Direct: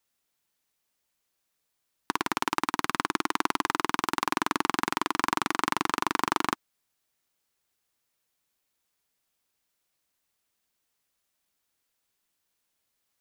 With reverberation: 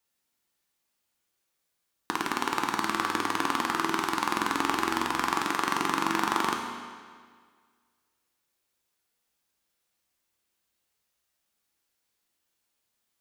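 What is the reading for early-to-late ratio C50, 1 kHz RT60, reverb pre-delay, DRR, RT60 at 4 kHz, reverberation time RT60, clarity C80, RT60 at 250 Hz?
4.0 dB, 1.8 s, 6 ms, 1.0 dB, 1.6 s, 1.8 s, 5.0 dB, 1.8 s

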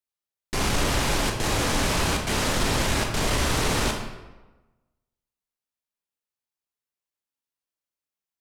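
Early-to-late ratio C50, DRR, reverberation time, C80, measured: 4.5 dB, 1.5 dB, 1.2 s, 7.0 dB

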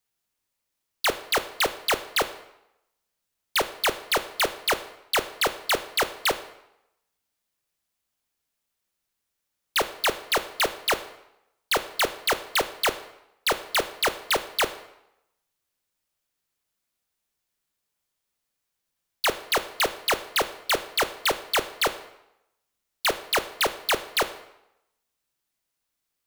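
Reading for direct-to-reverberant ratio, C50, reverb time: 11.5 dB, 14.0 dB, 0.85 s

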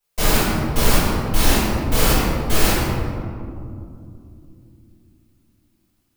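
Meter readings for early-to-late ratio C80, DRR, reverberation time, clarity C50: -1.0 dB, -12.5 dB, 2.7 s, -3.0 dB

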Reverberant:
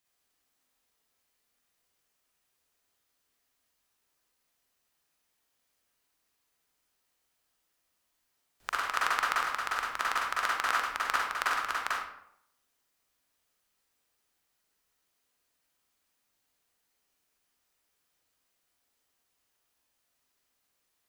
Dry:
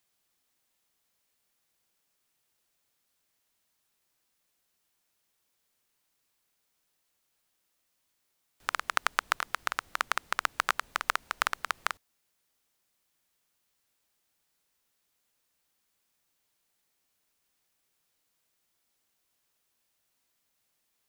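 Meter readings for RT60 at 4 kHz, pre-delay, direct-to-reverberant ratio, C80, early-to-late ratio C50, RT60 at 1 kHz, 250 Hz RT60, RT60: 0.45 s, 39 ms, -5.5 dB, 4.5 dB, -1.0 dB, 0.70 s, 0.75 s, 0.75 s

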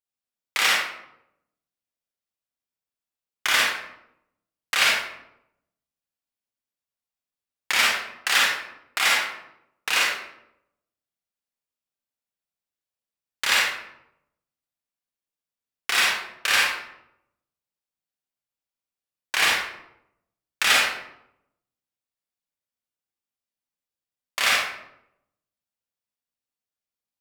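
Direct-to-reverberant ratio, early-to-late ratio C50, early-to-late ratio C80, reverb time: -4.5 dB, -1.0 dB, 3.5 dB, 0.80 s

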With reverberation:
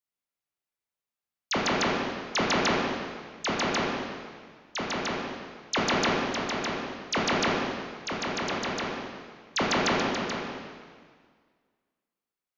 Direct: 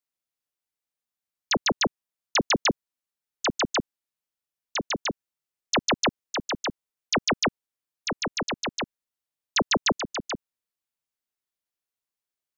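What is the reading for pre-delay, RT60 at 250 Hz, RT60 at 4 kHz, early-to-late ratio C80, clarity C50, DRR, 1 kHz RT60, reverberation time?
7 ms, 1.8 s, 1.7 s, 1.5 dB, -0.5 dB, -4.0 dB, 1.8 s, 1.8 s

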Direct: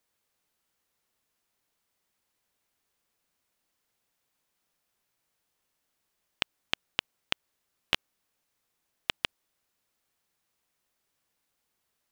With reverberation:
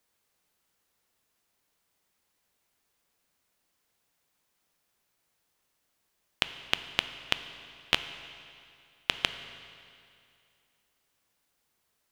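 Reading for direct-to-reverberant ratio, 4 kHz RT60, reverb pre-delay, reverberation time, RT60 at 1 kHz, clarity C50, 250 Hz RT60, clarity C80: 10.0 dB, 2.3 s, 7 ms, 2.5 s, 2.5 s, 11.0 dB, 2.5 s, 12.0 dB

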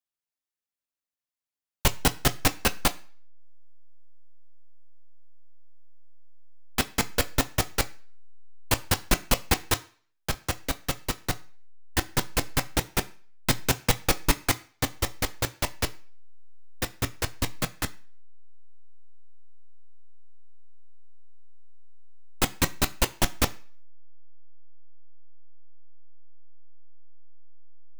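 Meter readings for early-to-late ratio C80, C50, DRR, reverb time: 24.0 dB, 20.5 dB, 8.5 dB, 0.45 s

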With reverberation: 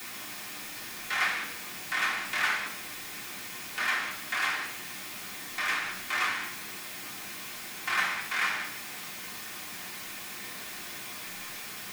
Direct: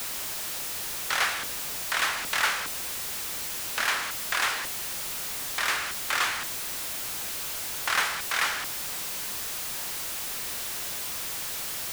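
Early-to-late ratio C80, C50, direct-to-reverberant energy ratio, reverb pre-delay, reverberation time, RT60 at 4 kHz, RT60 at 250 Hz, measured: 10.5 dB, 8.0 dB, -4.0 dB, 3 ms, 0.70 s, 0.95 s, 0.85 s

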